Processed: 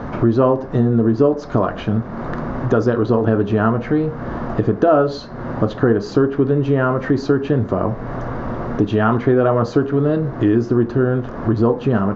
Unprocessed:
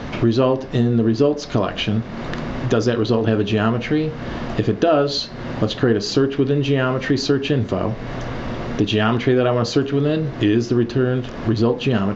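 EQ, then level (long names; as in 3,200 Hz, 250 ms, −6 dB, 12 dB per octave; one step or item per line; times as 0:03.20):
high shelf with overshoot 1,900 Hz −12 dB, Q 1.5
+1.5 dB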